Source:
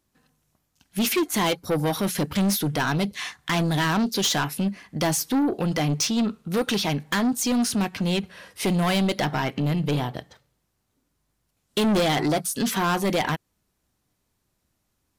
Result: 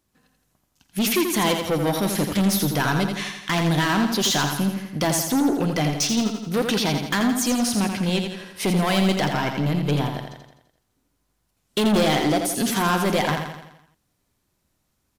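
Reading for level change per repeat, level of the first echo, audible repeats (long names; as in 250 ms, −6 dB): −5.5 dB, −6.0 dB, 6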